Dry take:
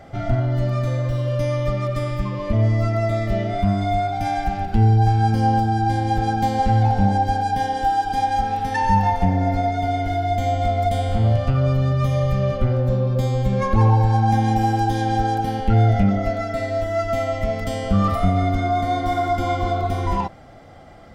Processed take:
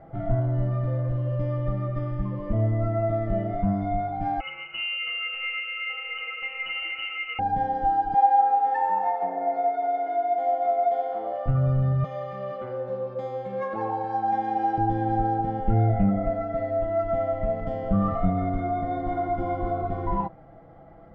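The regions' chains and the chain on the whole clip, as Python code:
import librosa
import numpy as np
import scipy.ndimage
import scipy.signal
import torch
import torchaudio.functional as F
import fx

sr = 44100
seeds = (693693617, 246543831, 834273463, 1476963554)

y = fx.chain(x, sr, fx.freq_invert(carrier_hz=2900),
    fx.echo_single(ms=333, db=-11.0), at=(4.4, 7.39))
y = fx.chain(y, sr, fx.highpass(hz=380.0, slope=24),
    fx.peak_eq(hz=810.0, db=5.5, octaves=0.82), at=(8.14, 11.46))
y = fx.chain(y, sr, fx.highpass(hz=400.0, slope=12),
    fx.high_shelf(hz=2500.0, db=8.0), at=(12.04, 14.78))
y = scipy.signal.sosfilt(scipy.signal.butter(2, 1200.0, 'lowpass', fs=sr, output='sos'), y)
y = y + 0.49 * np.pad(y, (int(6.1 * sr / 1000.0), 0))[:len(y)]
y = y * librosa.db_to_amplitude(-5.0)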